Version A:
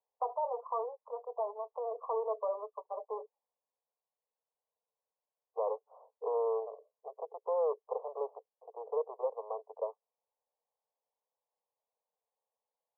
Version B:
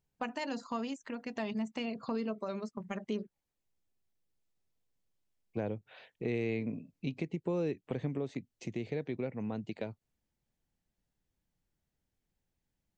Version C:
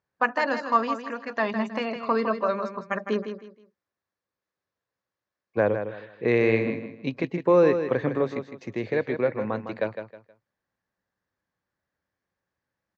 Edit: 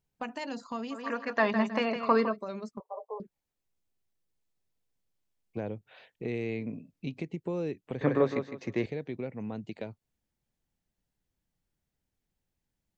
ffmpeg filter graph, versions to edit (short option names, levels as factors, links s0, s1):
-filter_complex "[2:a]asplit=2[s0][s1];[1:a]asplit=4[s2][s3][s4][s5];[s2]atrim=end=1.06[s6];[s0]atrim=start=0.9:end=2.37[s7];[s3]atrim=start=2.21:end=2.802[s8];[0:a]atrim=start=2.798:end=3.202[s9];[s4]atrim=start=3.198:end=8.012[s10];[s1]atrim=start=8.008:end=8.862[s11];[s5]atrim=start=8.858[s12];[s6][s7]acrossfade=d=0.16:c1=tri:c2=tri[s13];[s13][s8]acrossfade=d=0.16:c1=tri:c2=tri[s14];[s14][s9]acrossfade=d=0.004:c1=hsin:c2=hsin[s15];[s15][s10]acrossfade=d=0.004:c1=hsin:c2=hsin[s16];[s16][s11]acrossfade=d=0.004:c1=hsin:c2=hsin[s17];[s17][s12]acrossfade=d=0.004:c1=hsin:c2=hsin"